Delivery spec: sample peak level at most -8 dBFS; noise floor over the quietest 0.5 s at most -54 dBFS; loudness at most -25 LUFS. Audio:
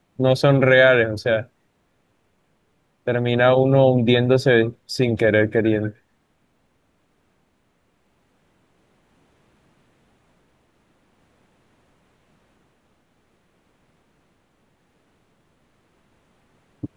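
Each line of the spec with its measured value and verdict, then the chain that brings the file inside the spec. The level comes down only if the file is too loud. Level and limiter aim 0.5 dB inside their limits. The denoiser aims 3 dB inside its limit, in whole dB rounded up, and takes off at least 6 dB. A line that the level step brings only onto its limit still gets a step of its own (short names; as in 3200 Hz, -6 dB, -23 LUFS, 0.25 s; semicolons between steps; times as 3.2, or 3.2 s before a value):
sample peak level -4.0 dBFS: fail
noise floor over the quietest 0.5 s -66 dBFS: OK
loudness -18.0 LUFS: fail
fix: gain -7.5 dB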